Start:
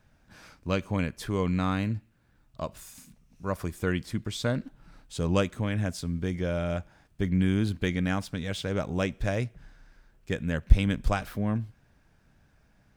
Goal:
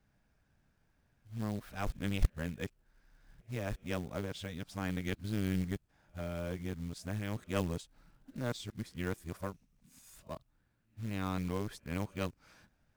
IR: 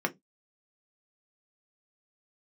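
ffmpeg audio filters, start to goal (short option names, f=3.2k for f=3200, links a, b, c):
-af "areverse,acrusher=bits=5:mode=log:mix=0:aa=0.000001,aeval=exprs='(tanh(3.16*val(0)+0.8)-tanh(0.8))/3.16':c=same,volume=-5dB"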